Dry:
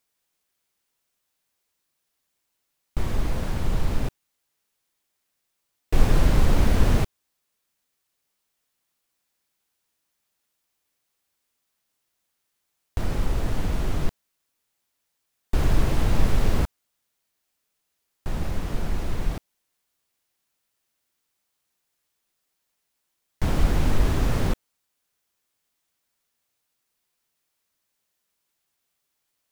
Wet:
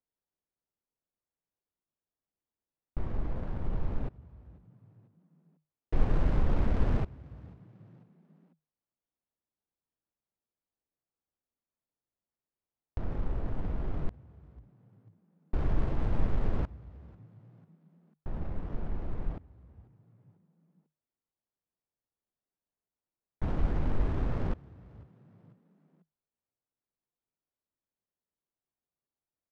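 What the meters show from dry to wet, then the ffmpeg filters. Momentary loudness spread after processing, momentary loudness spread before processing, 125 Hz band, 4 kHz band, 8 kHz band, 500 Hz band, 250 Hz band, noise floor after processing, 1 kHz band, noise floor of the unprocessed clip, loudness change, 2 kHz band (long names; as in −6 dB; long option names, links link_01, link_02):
23 LU, 11 LU, −8.0 dB, −19.5 dB, below −25 dB, −8.5 dB, −8.0 dB, below −85 dBFS, −9.5 dB, −78 dBFS, −8.5 dB, −13.0 dB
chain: -filter_complex "[0:a]adynamicsmooth=sensitivity=2:basefreq=920,asplit=4[link_01][link_02][link_03][link_04];[link_02]adelay=494,afreqshift=51,volume=-24dB[link_05];[link_03]adelay=988,afreqshift=102,volume=-30.9dB[link_06];[link_04]adelay=1482,afreqshift=153,volume=-37.9dB[link_07];[link_01][link_05][link_06][link_07]amix=inputs=4:normalize=0,volume=-8dB"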